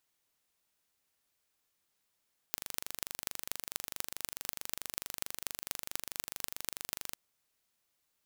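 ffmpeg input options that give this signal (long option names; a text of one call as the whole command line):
ffmpeg -f lavfi -i "aevalsrc='0.531*eq(mod(n,1793),0)*(0.5+0.5*eq(mod(n,10758),0))':duration=4.61:sample_rate=44100" out.wav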